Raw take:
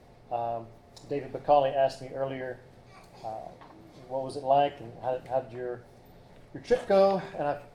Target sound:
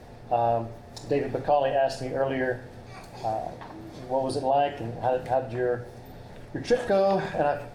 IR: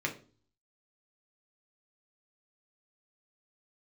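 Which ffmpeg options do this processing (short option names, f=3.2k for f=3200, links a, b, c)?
-filter_complex "[0:a]alimiter=limit=-22.5dB:level=0:latency=1:release=137,asplit=2[a][b];[1:a]atrim=start_sample=2205,asetrate=37926,aresample=44100[c];[b][c]afir=irnorm=-1:irlink=0,volume=-13.5dB[d];[a][d]amix=inputs=2:normalize=0,volume=7dB"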